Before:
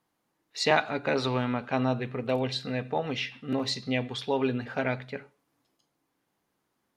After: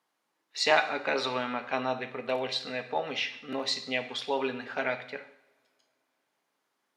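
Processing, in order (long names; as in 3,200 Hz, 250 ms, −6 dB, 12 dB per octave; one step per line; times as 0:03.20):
meter weighting curve A
coupled-rooms reverb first 0.73 s, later 3.3 s, from −28 dB, DRR 8.5 dB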